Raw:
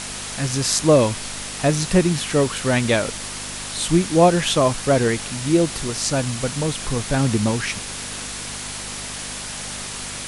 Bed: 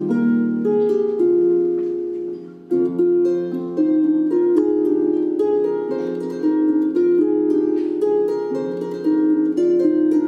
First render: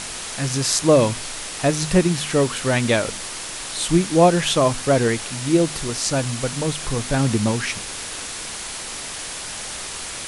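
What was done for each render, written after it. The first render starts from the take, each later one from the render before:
hum removal 50 Hz, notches 5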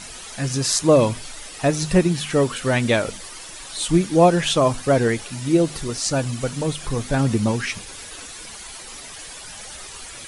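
broadband denoise 11 dB, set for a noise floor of −32 dBFS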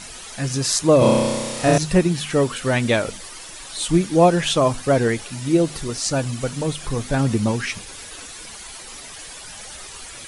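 0:00.98–0:01.78: flutter between parallel walls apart 5.4 metres, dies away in 1.5 s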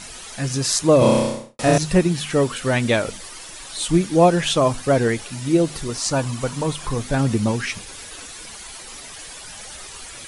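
0:01.17–0:01.59: fade out and dull
0:05.94–0:06.94: parametric band 1,000 Hz +8.5 dB 0.45 octaves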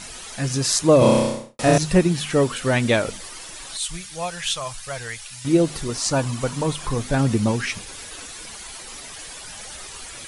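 0:03.77–0:05.45: guitar amp tone stack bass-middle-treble 10-0-10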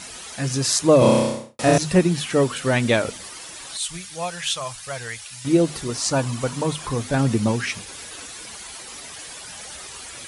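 high-pass filter 58 Hz
mains-hum notches 50/100/150/200 Hz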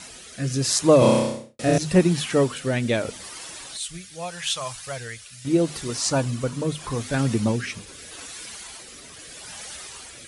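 rotating-speaker cabinet horn 0.8 Hz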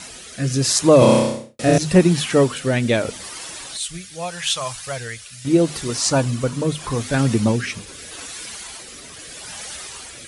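level +4.5 dB
brickwall limiter −2 dBFS, peak gain reduction 2.5 dB

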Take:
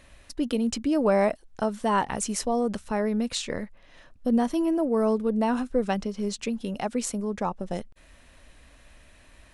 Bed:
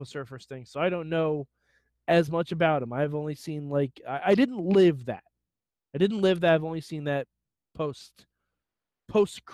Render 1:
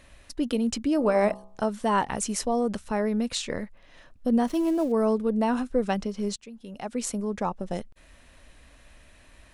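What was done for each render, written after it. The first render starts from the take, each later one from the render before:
0:00.96–0:01.63: hum removal 64.82 Hz, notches 19
0:04.45–0:04.92: gap after every zero crossing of 0.063 ms
0:06.36–0:07.08: fade in quadratic, from −16 dB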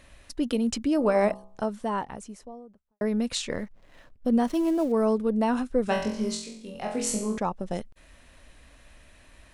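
0:01.09–0:03.01: fade out and dull
0:03.52–0:05.04: slack as between gear wheels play −53 dBFS
0:05.85–0:07.38: flutter between parallel walls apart 3.9 metres, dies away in 0.58 s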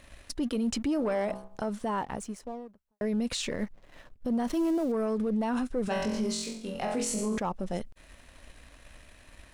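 leveller curve on the samples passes 1
brickwall limiter −23 dBFS, peak gain reduction 11 dB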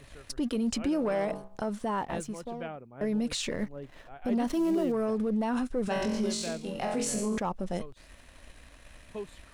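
mix in bed −16.5 dB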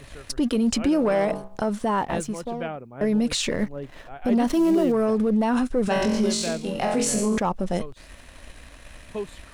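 level +7.5 dB

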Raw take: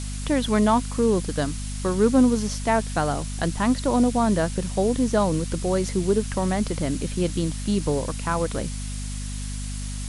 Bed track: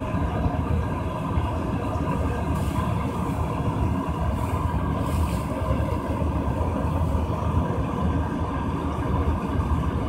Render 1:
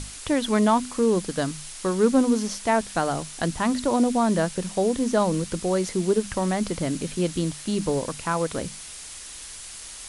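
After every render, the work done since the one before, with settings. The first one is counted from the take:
mains-hum notches 50/100/150/200/250 Hz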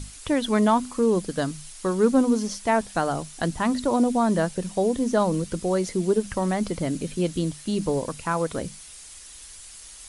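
broadband denoise 7 dB, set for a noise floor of −40 dBFS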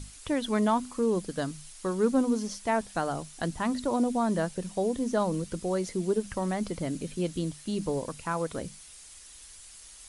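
level −5.5 dB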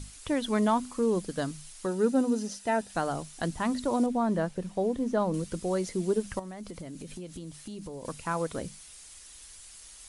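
0:01.86–0:02.90: notch comb filter 1,100 Hz
0:04.06–0:05.34: high-shelf EQ 3,700 Hz −11 dB
0:06.39–0:08.05: downward compressor 8 to 1, threshold −37 dBFS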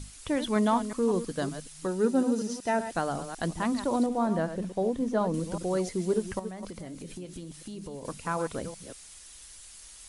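delay that plays each chunk backwards 186 ms, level −10 dB

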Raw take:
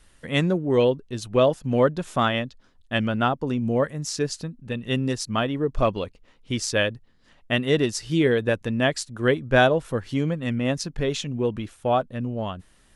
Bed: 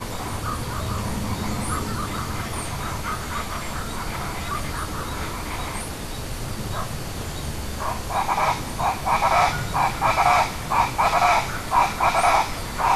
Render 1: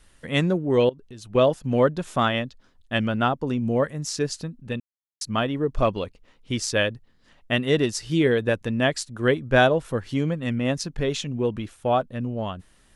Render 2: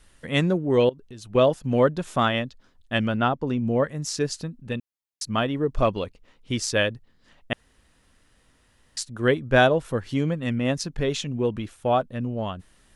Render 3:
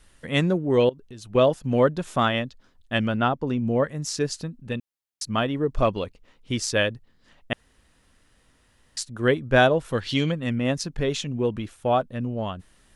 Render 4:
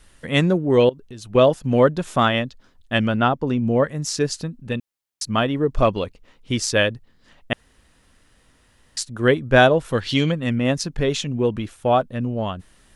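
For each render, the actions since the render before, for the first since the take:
0:00.89–0:01.35: downward compressor 4 to 1, threshold −39 dBFS; 0:04.80–0:05.21: silence
0:03.17–0:03.91: high-frequency loss of the air 70 metres; 0:07.53–0:08.97: fill with room tone
0:09.92–0:10.32: parametric band 3,700 Hz +15 dB 1.6 octaves
level +4 dB

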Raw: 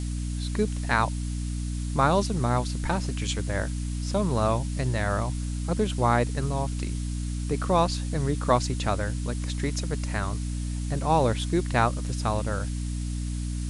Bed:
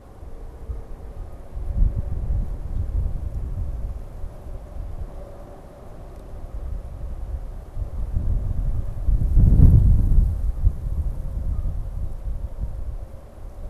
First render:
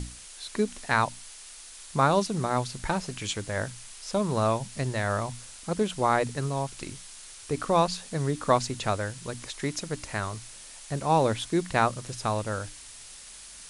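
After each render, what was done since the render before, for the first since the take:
mains-hum notches 60/120/180/240/300 Hz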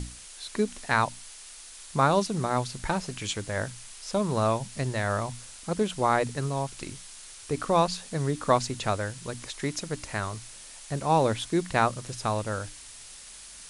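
no processing that can be heard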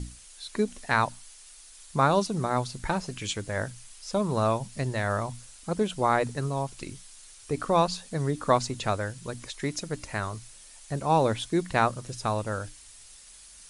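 broadband denoise 7 dB, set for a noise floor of −46 dBFS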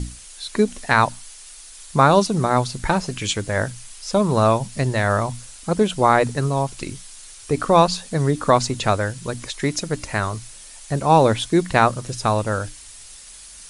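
level +8.5 dB
brickwall limiter −2 dBFS, peak gain reduction 3 dB

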